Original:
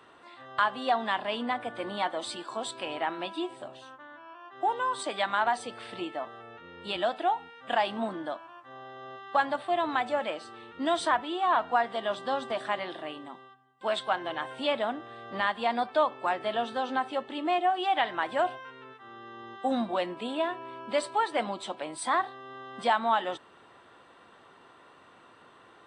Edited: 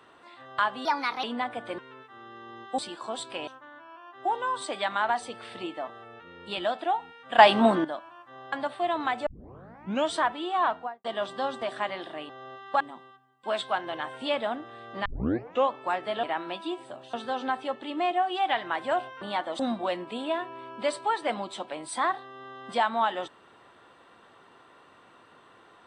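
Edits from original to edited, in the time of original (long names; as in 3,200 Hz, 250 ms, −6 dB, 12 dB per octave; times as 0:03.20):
0:00.85–0:01.33: play speed 125%
0:01.88–0:02.26: swap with 0:18.69–0:19.69
0:02.95–0:03.85: move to 0:16.61
0:07.76–0:08.22: clip gain +11.5 dB
0:08.90–0:09.41: move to 0:13.18
0:10.15: tape start 0.86 s
0:11.52–0:11.93: fade out and dull
0:15.43: tape start 0.65 s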